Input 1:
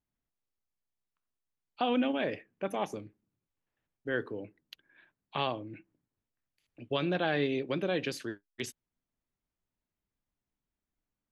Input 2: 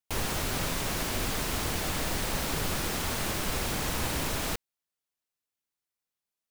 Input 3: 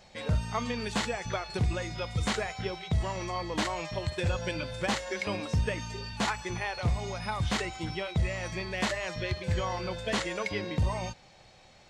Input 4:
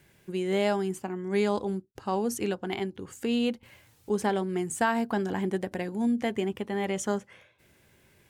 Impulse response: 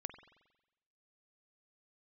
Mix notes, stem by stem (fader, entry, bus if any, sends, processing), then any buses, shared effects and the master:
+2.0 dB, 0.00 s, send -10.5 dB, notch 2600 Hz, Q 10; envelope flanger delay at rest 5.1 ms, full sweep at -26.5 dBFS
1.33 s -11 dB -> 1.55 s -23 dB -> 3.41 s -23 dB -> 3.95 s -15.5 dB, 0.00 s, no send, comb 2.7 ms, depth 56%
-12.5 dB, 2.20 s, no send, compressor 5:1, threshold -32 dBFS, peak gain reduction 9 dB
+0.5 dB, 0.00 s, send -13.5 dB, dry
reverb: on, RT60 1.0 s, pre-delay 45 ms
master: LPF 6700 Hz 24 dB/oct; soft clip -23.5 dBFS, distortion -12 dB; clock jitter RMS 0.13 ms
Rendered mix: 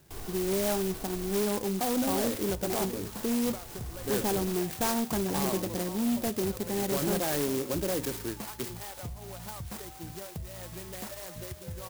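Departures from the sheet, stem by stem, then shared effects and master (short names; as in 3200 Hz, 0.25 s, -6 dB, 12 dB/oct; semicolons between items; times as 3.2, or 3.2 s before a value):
stem 1: missing envelope flanger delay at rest 5.1 ms, full sweep at -26.5 dBFS; stem 3 -12.5 dB -> -4.5 dB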